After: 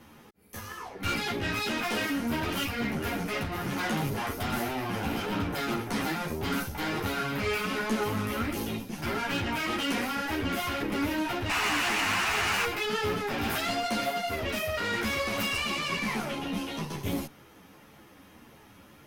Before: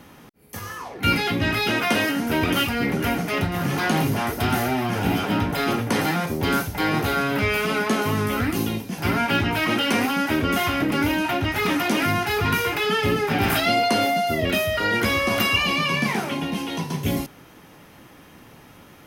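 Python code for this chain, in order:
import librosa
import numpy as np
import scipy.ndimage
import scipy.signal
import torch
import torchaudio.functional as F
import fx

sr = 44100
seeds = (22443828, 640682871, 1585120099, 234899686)

y = fx.spec_paint(x, sr, seeds[0], shape='noise', start_s=11.49, length_s=1.16, low_hz=640.0, high_hz=3000.0, level_db=-15.0)
y = fx.tube_stage(y, sr, drive_db=23.0, bias=0.6)
y = fx.ensemble(y, sr)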